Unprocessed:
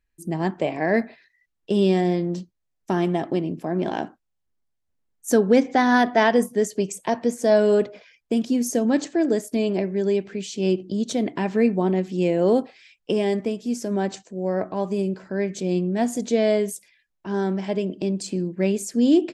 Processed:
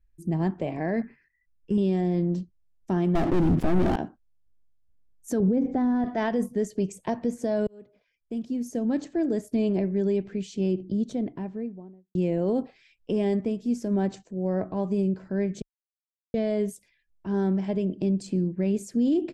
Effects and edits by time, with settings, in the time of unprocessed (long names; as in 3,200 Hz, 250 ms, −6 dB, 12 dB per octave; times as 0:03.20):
0:01.02–0:01.78: phaser with its sweep stopped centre 1,600 Hz, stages 4
0:03.15–0:03.96: leveller curve on the samples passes 5
0:05.40–0:06.04: tilt shelving filter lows +9.5 dB
0:07.67–0:09.62: fade in
0:10.52–0:12.15: fade out and dull
0:15.62–0:16.34: silence
whole clip: low-shelf EQ 140 Hz +11.5 dB; brickwall limiter −13 dBFS; spectral tilt −1.5 dB per octave; level −6.5 dB